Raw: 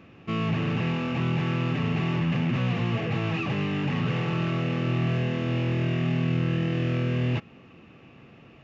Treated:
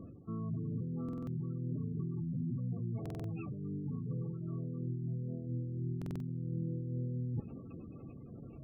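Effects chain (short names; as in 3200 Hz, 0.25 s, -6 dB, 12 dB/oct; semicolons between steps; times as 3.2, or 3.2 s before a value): LPF 2700 Hz 12 dB/oct; reverse; compressor 8:1, threshold -39 dBFS, peak gain reduction 17 dB; reverse; tilt -2 dB/oct; spectral gate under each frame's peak -20 dB strong; on a send at -17 dB: reverb RT60 0.35 s, pre-delay 3 ms; on the sum: dynamic EQ 730 Hz, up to -3 dB, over -59 dBFS, Q 1.5; stuck buffer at 1.04/3.01/5.97, samples 2048, times 4; noise-modulated level, depth 55%; gain +1 dB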